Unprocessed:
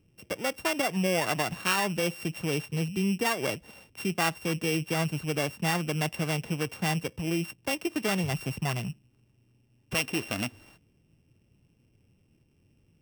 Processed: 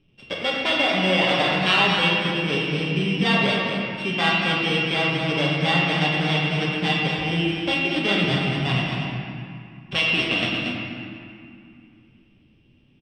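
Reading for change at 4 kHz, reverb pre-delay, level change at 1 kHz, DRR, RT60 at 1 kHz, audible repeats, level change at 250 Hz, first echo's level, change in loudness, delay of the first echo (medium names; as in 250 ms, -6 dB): +13.5 dB, 4 ms, +8.0 dB, -5.5 dB, 2.4 s, 1, +7.0 dB, -7.5 dB, +8.5 dB, 231 ms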